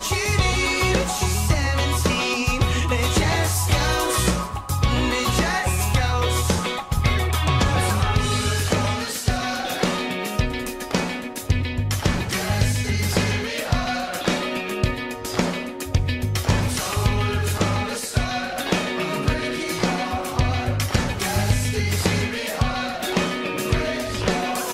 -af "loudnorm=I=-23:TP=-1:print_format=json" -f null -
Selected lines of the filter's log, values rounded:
"input_i" : "-22.5",
"input_tp" : "-7.2",
"input_lra" : "3.2",
"input_thresh" : "-32.5",